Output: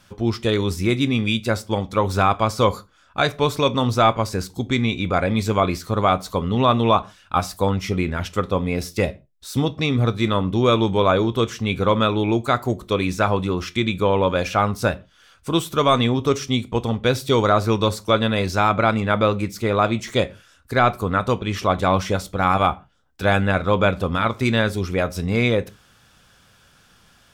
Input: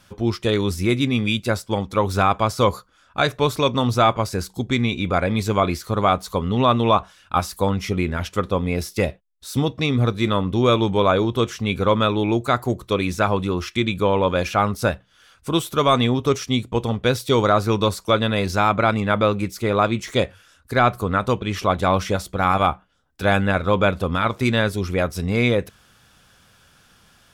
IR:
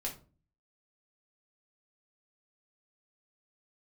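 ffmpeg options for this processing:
-filter_complex "[0:a]equalizer=f=11000:w=6:g=-8,asplit=2[s0][s1];[1:a]atrim=start_sample=2205,afade=t=out:st=0.2:d=0.01,atrim=end_sample=9261,adelay=18[s2];[s1][s2]afir=irnorm=-1:irlink=0,volume=0.15[s3];[s0][s3]amix=inputs=2:normalize=0"

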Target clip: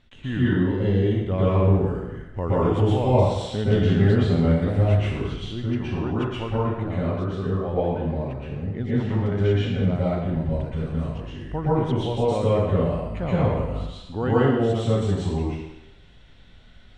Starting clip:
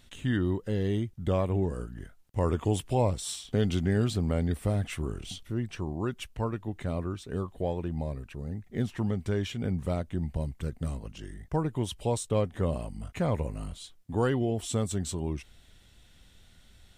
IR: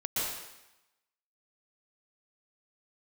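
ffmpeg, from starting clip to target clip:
-filter_complex "[0:a]lowpass=3100[s0];[1:a]atrim=start_sample=2205[s1];[s0][s1]afir=irnorm=-1:irlink=0,volume=1.12"

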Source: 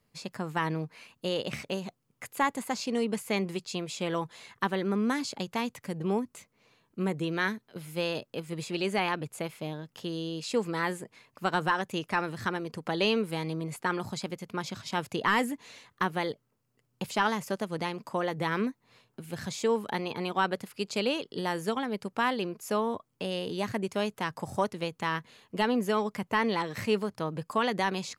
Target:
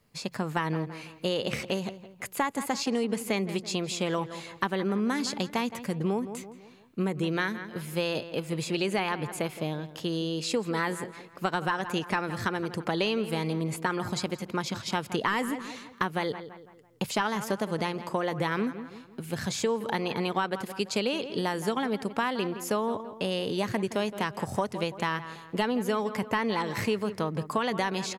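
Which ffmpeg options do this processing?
-filter_complex "[0:a]asplit=2[s0][s1];[s1]adelay=167,lowpass=f=2900:p=1,volume=0.178,asplit=2[s2][s3];[s3]adelay=167,lowpass=f=2900:p=1,volume=0.44,asplit=2[s4][s5];[s5]adelay=167,lowpass=f=2900:p=1,volume=0.44,asplit=2[s6][s7];[s7]adelay=167,lowpass=f=2900:p=1,volume=0.44[s8];[s2][s4][s6][s8]amix=inputs=4:normalize=0[s9];[s0][s9]amix=inputs=2:normalize=0,acompressor=threshold=0.0355:ratio=6,volume=1.78"

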